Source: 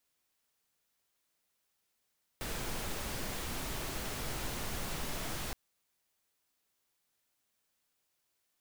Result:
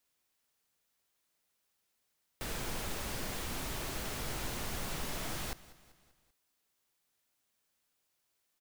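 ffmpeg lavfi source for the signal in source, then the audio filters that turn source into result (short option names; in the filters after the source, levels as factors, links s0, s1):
-f lavfi -i "anoisesrc=c=pink:a=0.0646:d=3.12:r=44100:seed=1"
-af "aecho=1:1:194|388|582|776:0.112|0.0583|0.0303|0.0158"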